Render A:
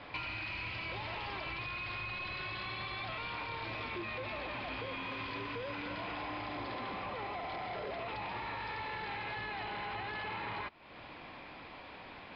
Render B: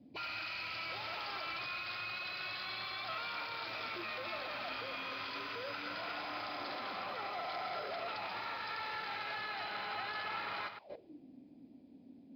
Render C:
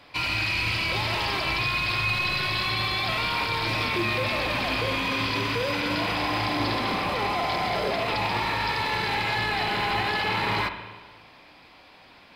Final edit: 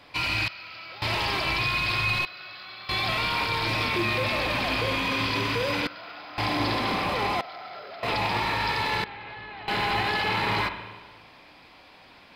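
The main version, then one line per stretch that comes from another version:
C
0.48–1.02 from B
2.25–2.89 from B
5.87–6.38 from B
7.41–8.03 from B
9.04–9.68 from A

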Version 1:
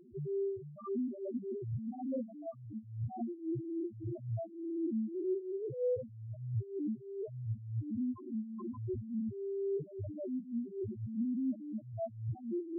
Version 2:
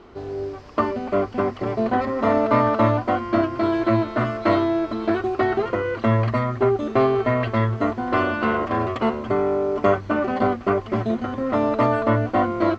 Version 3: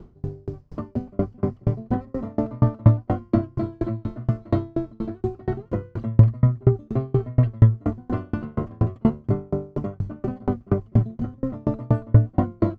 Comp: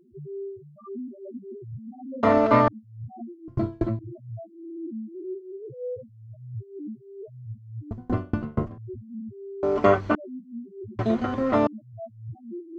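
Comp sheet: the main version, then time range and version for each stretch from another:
1
2.23–2.68 from 2
3.48–3.99 from 3
7.91–8.78 from 3
9.63–10.15 from 2
10.99–11.67 from 2

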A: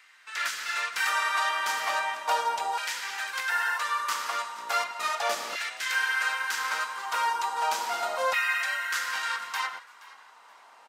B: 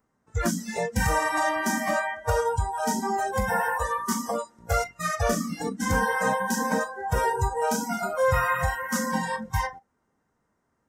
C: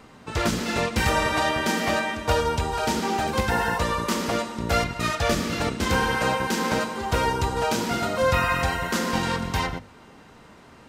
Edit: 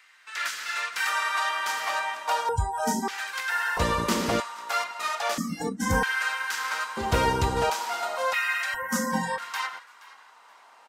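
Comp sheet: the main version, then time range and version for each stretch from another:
A
2.49–3.08 from B
3.77–4.4 from C
5.38–6.03 from B
6.97–7.7 from C
8.74–9.38 from B

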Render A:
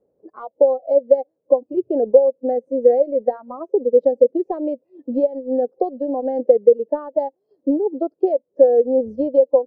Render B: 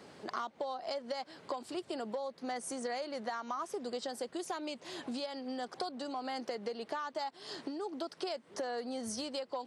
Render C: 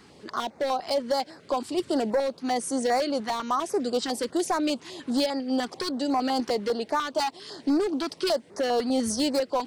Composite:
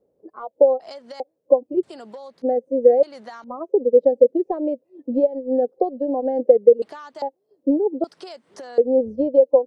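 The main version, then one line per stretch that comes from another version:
A
0.8–1.2 from B
1.83–2.42 from B
3.03–3.44 from B
6.82–7.22 from B
8.04–8.78 from B
not used: C

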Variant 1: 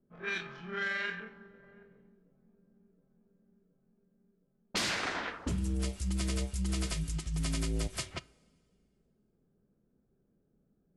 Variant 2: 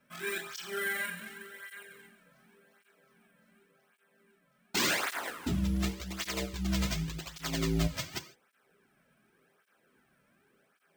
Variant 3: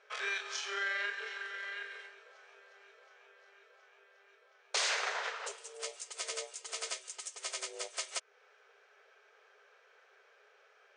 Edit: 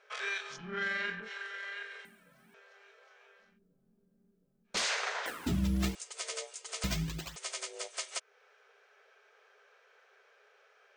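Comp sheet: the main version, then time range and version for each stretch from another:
3
0.54–1.26 from 1, crossfade 0.10 s
2.05–2.54 from 2
3.48–4.75 from 1, crossfade 0.24 s
5.26–5.95 from 2
6.84–7.36 from 2

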